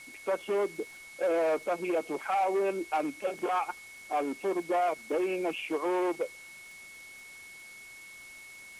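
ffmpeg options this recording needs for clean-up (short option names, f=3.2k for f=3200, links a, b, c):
-af "adeclick=t=4,bandreject=f=2.2k:w=30,afwtdn=0.0022"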